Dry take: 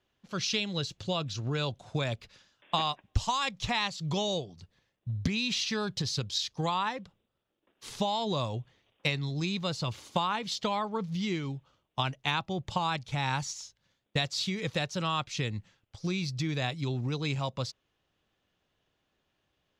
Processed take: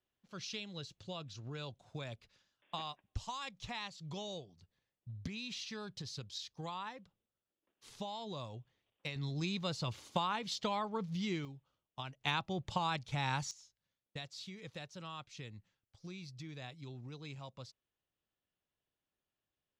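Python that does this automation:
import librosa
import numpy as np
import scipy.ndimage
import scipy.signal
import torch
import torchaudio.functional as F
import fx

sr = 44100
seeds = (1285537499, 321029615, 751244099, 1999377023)

y = fx.gain(x, sr, db=fx.steps((0.0, -13.0), (9.16, -5.5), (11.45, -14.0), (12.21, -5.0), (13.51, -16.0)))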